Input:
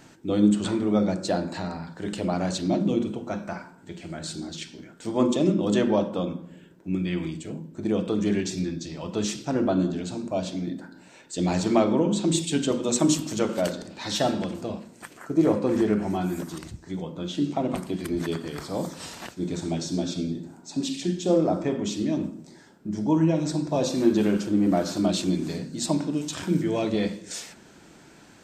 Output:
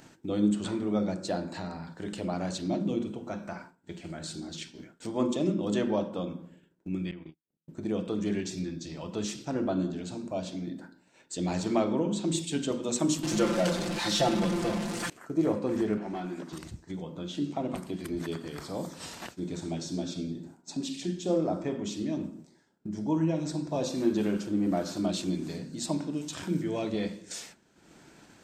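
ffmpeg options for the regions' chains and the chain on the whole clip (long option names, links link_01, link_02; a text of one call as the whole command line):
ffmpeg -i in.wav -filter_complex "[0:a]asettb=1/sr,asplit=3[link_01][link_02][link_03];[link_01]atrim=end=7.114[link_04];[link_02]atrim=start=7.11:end=7.68,asetpts=PTS-STARTPTS,afade=type=in:duration=0.004:curve=qsin,afade=type=out:start_time=0.566:duration=0.004:curve=qsin,lowpass=3400,agate=range=-37dB:threshold=-30dB:ratio=16:release=100:detection=peak,acompressor=threshold=-36dB:ratio=4:attack=3.2:release=140:knee=1:detection=peak[link_05];[link_03]atrim=start=7.676[link_06];[link_04][link_05]acrossfade=duration=0.004:curve1=hsin:curve2=qsin[link_07];[link_07][link_06]acrossfade=duration=0.004:curve1=qsin:curve2=hsin,asettb=1/sr,asplit=3[link_08][link_09][link_10];[link_08]atrim=end=13.234[link_11];[link_09]atrim=start=13.23:end=15.1,asetpts=PTS-STARTPTS,afade=type=in:duration=0.004:curve=qsin,afade=type=out:start_time=1.866:duration=0.004:curve=qsin,aeval=exprs='val(0)+0.5*0.0596*sgn(val(0))':channel_layout=same,lowpass=8500,aecho=1:1:5.8:0.83,atrim=end_sample=82467[link_12];[link_10]atrim=start=15.096[link_13];[link_11][link_12]acrossfade=duration=0.004:curve1=hsin:curve2=qsin[link_14];[link_14][link_13]acrossfade=duration=0.004:curve1=qsin:curve2=hsin,asettb=1/sr,asplit=3[link_15][link_16][link_17];[link_15]atrim=end=15.974[link_18];[link_16]atrim=start=15.97:end=16.53,asetpts=PTS-STARTPTS,afade=type=in:duration=0.004:curve=qsin,afade=type=out:start_time=0.556:duration=0.004:curve=qsin,highpass=210,lowpass=4700,asoftclip=type=hard:threshold=-24dB[link_19];[link_17]atrim=start=16.526[link_20];[link_18][link_19]acrossfade=duration=0.004:curve1=hsin:curve2=qsin[link_21];[link_21][link_20]acrossfade=duration=0.004:curve1=qsin:curve2=hsin,agate=range=-33dB:threshold=-37dB:ratio=3:detection=peak,acompressor=mode=upward:threshold=-28dB:ratio=2.5,volume=-6dB" out.wav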